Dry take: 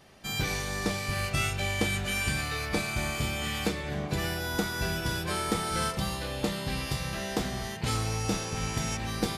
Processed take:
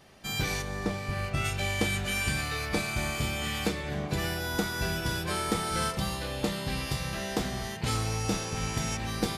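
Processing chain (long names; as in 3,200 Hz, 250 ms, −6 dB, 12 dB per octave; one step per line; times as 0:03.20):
0:00.61–0:01.44: high-shelf EQ 2,100 Hz → 3,100 Hz −11 dB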